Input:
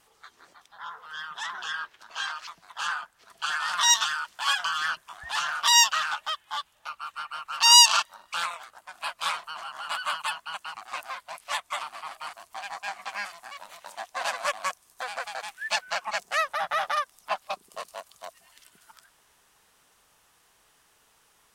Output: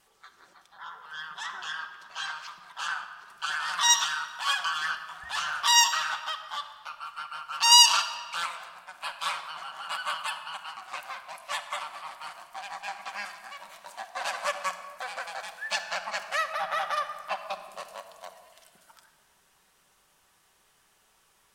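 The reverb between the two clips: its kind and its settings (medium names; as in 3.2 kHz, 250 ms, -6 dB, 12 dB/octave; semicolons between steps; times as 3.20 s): simulated room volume 3000 m³, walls mixed, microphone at 1.1 m; trim -3 dB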